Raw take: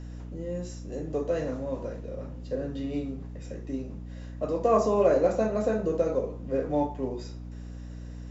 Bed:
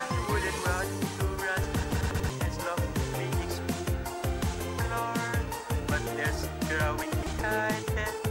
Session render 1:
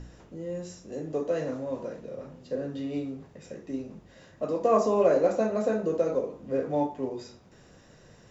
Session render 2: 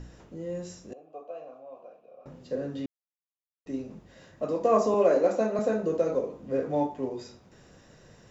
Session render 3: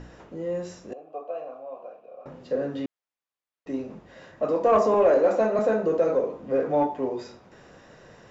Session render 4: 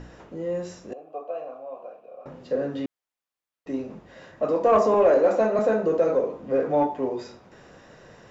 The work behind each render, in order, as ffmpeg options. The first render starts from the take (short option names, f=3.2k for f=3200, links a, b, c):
-af "bandreject=f=60:t=h:w=4,bandreject=f=120:t=h:w=4,bandreject=f=180:t=h:w=4,bandreject=f=240:t=h:w=4,bandreject=f=300:t=h:w=4"
-filter_complex "[0:a]asettb=1/sr,asplit=3[a][b][c];[a]atrim=end=0.934[d];[b]atrim=start=0.93:end=2.26,asetpts=PTS-STARTPTS,afade=t=in:d=0.004:c=qsin,afade=t=out:st=1.326:d=0.004:c=qsin,asplit=3[e][f][g];[e]bandpass=f=730:t=q:w=8,volume=0dB[h];[f]bandpass=f=1.09k:t=q:w=8,volume=-6dB[i];[g]bandpass=f=2.44k:t=q:w=8,volume=-9dB[j];[h][i][j]amix=inputs=3:normalize=0[k];[c]atrim=start=2.256[l];[d][k]acrossfade=d=0.004:c1=hsin:c2=qsin[m];[m][l]acrossfade=d=0.004:c1=qsin:c2=hsin,asettb=1/sr,asplit=3[n][o][p];[n]atrim=end=4.944[q];[o]atrim=start=4.94:end=5.59,asetpts=PTS-STARTPTS,afade=t=in:d=0.004:c=qsin,afade=t=out:st=0.646:d=0.004:c=qsin,highpass=f=180:w=0.5412,highpass=f=180:w=1.3066[r];[p]atrim=start=5.586[s];[q][r]acrossfade=d=0.004:c1=hsin:c2=qsin[t];[t][s]acrossfade=d=0.004:c1=qsin:c2=hsin,asplit=3[u][v][w];[u]atrim=end=2.86,asetpts=PTS-STARTPTS,afade=t=out:st=2.856:d=0.004:c=hsin[x];[v]atrim=start=2.86:end=3.66,asetpts=PTS-STARTPTS,volume=0[y];[w]atrim=start=3.66,asetpts=PTS-STARTPTS,afade=t=in:d=0.004:c=hsin[z];[x][y][z]concat=n=3:v=0:a=1"
-filter_complex "[0:a]asplit=2[a][b];[b]asoftclip=type=tanh:threshold=-24.5dB,volume=-4dB[c];[a][c]amix=inputs=2:normalize=0,asplit=2[d][e];[e]highpass=f=720:p=1,volume=11dB,asoftclip=type=tanh:threshold=-9dB[f];[d][f]amix=inputs=2:normalize=0,lowpass=f=1.5k:p=1,volume=-6dB"
-af "volume=1dB"